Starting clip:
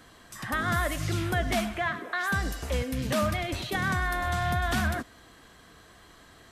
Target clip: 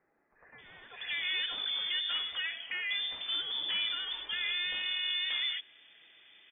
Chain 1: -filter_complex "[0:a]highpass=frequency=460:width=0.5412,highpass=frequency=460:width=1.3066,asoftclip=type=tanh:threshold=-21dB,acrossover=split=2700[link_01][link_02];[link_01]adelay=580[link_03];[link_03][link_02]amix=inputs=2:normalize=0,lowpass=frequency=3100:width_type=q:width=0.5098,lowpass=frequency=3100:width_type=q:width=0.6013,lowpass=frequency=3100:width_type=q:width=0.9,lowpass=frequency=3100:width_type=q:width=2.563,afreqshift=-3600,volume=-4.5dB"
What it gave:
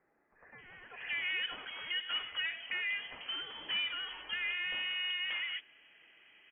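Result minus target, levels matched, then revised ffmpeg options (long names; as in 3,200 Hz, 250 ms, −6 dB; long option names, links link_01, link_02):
500 Hz band +3.5 dB
-filter_complex "[0:a]asoftclip=type=tanh:threshold=-21dB,acrossover=split=2700[link_01][link_02];[link_01]adelay=580[link_03];[link_03][link_02]amix=inputs=2:normalize=0,lowpass=frequency=3100:width_type=q:width=0.5098,lowpass=frequency=3100:width_type=q:width=0.6013,lowpass=frequency=3100:width_type=q:width=0.9,lowpass=frequency=3100:width_type=q:width=2.563,afreqshift=-3600,volume=-4.5dB"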